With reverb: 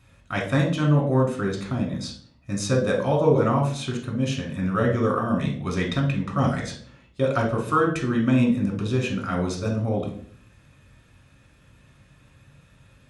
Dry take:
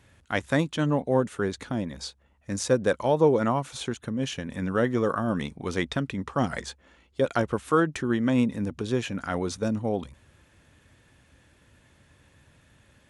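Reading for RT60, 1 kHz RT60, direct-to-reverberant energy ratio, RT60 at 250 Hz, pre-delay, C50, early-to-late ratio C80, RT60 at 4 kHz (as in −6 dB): 0.55 s, 0.45 s, −1.0 dB, 0.70 s, 3 ms, 7.0 dB, 12.0 dB, 0.45 s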